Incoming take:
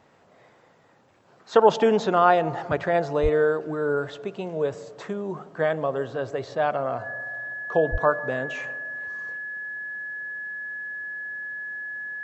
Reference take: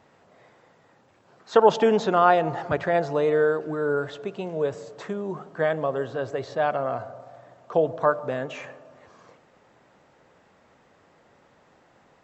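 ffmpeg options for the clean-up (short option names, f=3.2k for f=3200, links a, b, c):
-filter_complex "[0:a]bandreject=f=1.7k:w=30,asplit=3[a][b][c];[a]afade=t=out:st=3.22:d=0.02[d];[b]highpass=f=140:w=0.5412,highpass=f=140:w=1.3066,afade=t=in:st=3.22:d=0.02,afade=t=out:st=3.34:d=0.02[e];[c]afade=t=in:st=3.34:d=0.02[f];[d][e][f]amix=inputs=3:normalize=0,asplit=3[g][h][i];[g]afade=t=out:st=7.91:d=0.02[j];[h]highpass=f=140:w=0.5412,highpass=f=140:w=1.3066,afade=t=in:st=7.91:d=0.02,afade=t=out:st=8.03:d=0.02[k];[i]afade=t=in:st=8.03:d=0.02[l];[j][k][l]amix=inputs=3:normalize=0"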